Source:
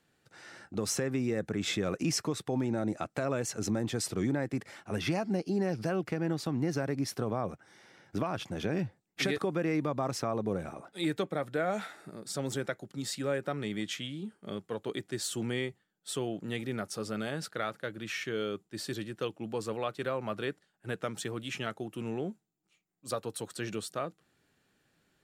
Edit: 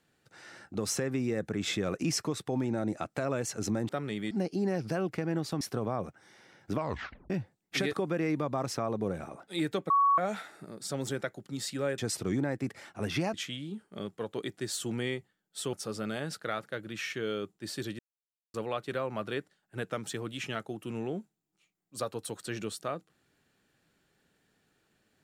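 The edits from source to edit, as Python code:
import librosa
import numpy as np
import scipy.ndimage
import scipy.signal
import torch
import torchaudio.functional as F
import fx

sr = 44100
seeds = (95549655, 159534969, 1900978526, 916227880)

y = fx.edit(x, sr, fx.swap(start_s=3.89, length_s=1.36, other_s=13.43, other_length_s=0.42),
    fx.cut(start_s=6.55, length_s=0.51),
    fx.tape_stop(start_s=8.22, length_s=0.53),
    fx.bleep(start_s=11.35, length_s=0.28, hz=1120.0, db=-20.5),
    fx.cut(start_s=16.24, length_s=0.6),
    fx.silence(start_s=19.1, length_s=0.55), tone=tone)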